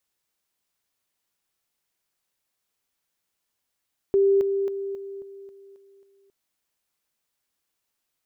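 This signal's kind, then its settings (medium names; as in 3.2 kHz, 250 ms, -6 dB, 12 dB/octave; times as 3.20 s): level ladder 394 Hz -15.5 dBFS, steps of -6 dB, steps 8, 0.27 s 0.00 s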